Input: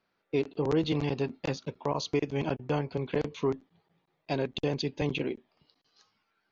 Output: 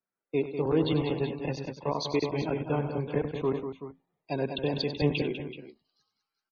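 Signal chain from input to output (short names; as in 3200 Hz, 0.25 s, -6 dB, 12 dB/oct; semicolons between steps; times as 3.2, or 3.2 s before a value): loudest bins only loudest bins 64; tapped delay 97/198/380/394 ms -11/-7/-10/-18.5 dB; three-band expander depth 40%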